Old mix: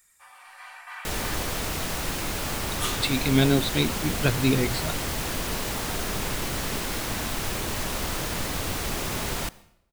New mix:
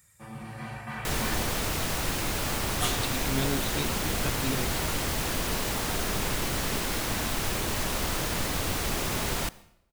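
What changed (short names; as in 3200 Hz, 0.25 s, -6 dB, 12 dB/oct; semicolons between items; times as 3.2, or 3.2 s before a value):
speech -10.5 dB; first sound: remove HPF 890 Hz 24 dB/oct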